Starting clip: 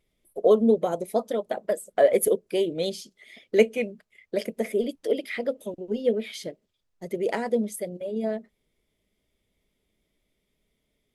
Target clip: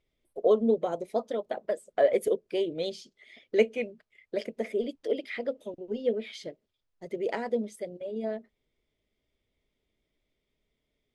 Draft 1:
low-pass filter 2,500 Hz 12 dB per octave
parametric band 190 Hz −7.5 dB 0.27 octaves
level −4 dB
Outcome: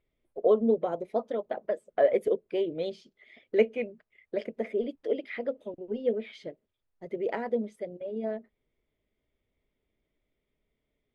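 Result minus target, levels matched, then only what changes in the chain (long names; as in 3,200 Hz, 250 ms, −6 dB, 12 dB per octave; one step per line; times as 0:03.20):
8,000 Hz band −14.0 dB
change: low-pass filter 5,700 Hz 12 dB per octave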